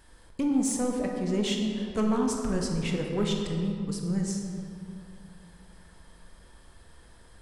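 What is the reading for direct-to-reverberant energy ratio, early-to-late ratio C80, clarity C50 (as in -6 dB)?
1.0 dB, 4.0 dB, 2.5 dB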